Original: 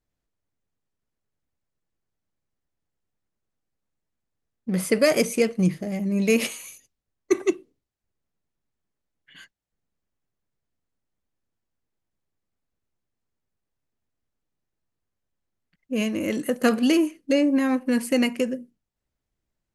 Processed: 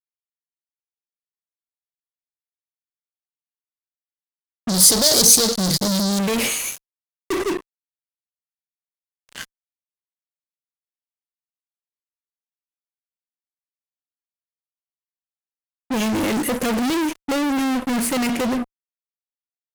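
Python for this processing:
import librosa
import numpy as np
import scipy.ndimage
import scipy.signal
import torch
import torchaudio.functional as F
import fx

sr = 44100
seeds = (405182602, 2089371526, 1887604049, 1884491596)

y = fx.fuzz(x, sr, gain_db=43.0, gate_db=-44.0)
y = fx.high_shelf_res(y, sr, hz=3300.0, db=10.5, q=3.0, at=(4.69, 6.19))
y = y * librosa.db_to_amplitude(-6.5)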